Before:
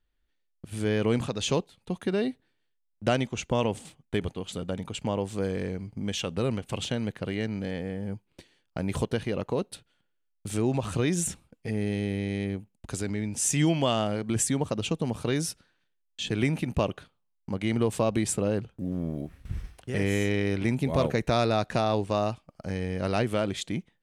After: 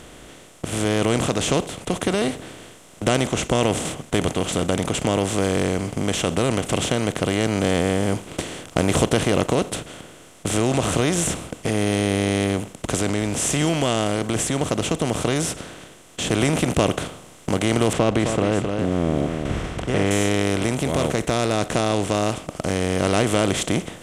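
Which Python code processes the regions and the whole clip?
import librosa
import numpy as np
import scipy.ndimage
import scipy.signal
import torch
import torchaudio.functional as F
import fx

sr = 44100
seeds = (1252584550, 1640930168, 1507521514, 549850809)

y = fx.chain(x, sr, fx.lowpass(hz=2300.0, slope=12),
    fx.echo_single(ms=263, db=-13.0), at=(17.93, 20.11))
y = fx.bin_compress(y, sr, power=0.4)
y = fx.rider(y, sr, range_db=10, speed_s=2.0)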